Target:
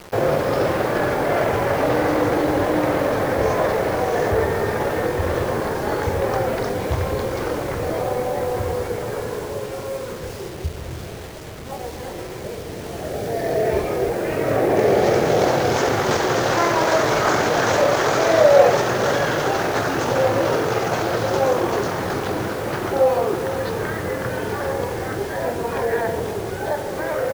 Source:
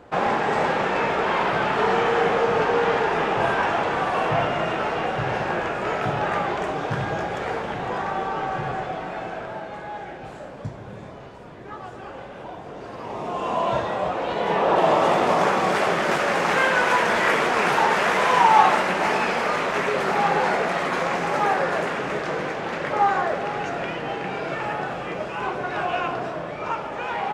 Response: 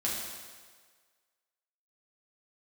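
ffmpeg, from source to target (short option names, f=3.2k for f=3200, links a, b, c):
-filter_complex "[0:a]equalizer=f=400:t=o:w=0.67:g=-9,equalizer=f=1.6k:t=o:w=0.67:g=-6,equalizer=f=10k:t=o:w=0.67:g=12,asplit=2[a][b];[b]acompressor=threshold=-33dB:ratio=10,volume=-2.5dB[c];[a][c]amix=inputs=2:normalize=0,asetrate=28595,aresample=44100,atempo=1.54221,acrusher=bits=6:mix=0:aa=0.000001,volume=4dB"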